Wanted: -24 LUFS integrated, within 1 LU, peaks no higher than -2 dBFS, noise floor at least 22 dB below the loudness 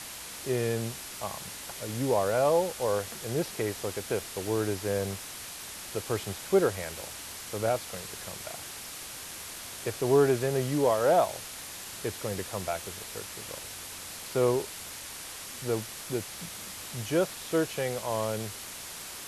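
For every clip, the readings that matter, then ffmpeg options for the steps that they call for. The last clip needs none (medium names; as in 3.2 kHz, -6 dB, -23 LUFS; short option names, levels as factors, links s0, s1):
noise floor -42 dBFS; noise floor target -53 dBFS; loudness -31.0 LUFS; peak level -11.5 dBFS; loudness target -24.0 LUFS
-> -af "afftdn=nr=11:nf=-42"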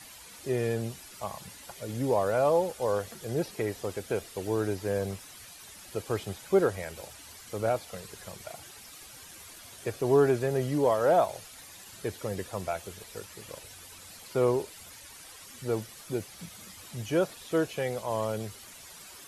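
noise floor -49 dBFS; noise floor target -52 dBFS
-> -af "afftdn=nr=6:nf=-49"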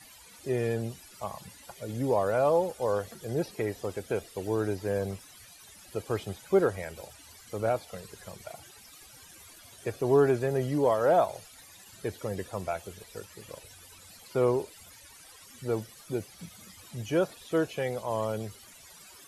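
noise floor -53 dBFS; loudness -30.0 LUFS; peak level -12.0 dBFS; loudness target -24.0 LUFS
-> -af "volume=2"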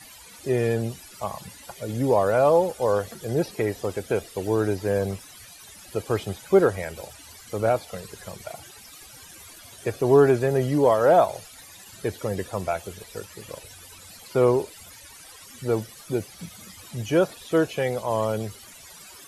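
loudness -24.0 LUFS; peak level -6.0 dBFS; noise floor -47 dBFS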